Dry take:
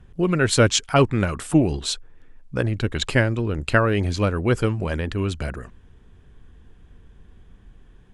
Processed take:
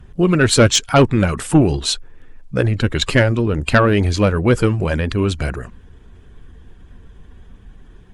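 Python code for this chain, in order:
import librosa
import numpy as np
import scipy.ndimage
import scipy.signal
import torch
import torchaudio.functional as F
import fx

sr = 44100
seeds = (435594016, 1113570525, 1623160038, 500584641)

y = fx.spec_quant(x, sr, step_db=15)
y = fx.fold_sine(y, sr, drive_db=3, ceiling_db=-4.5)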